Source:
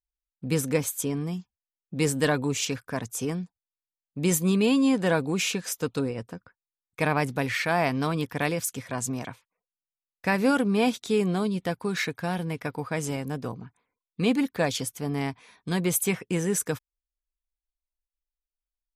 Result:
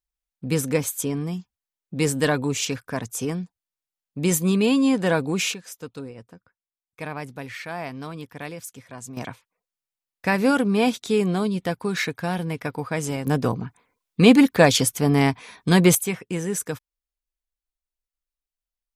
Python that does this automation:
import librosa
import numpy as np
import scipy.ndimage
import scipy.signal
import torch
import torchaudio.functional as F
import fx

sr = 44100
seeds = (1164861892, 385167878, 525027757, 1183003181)

y = fx.gain(x, sr, db=fx.steps((0.0, 2.5), (5.54, -8.0), (9.17, 3.0), (13.27, 10.5), (15.95, -0.5)))